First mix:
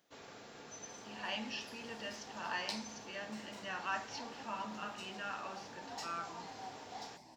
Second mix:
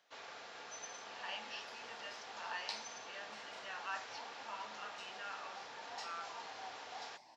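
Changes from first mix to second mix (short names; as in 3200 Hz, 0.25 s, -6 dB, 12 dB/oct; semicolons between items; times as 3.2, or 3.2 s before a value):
speech -4.0 dB; first sound +5.0 dB; master: add three-band isolator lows -17 dB, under 560 Hz, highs -16 dB, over 6200 Hz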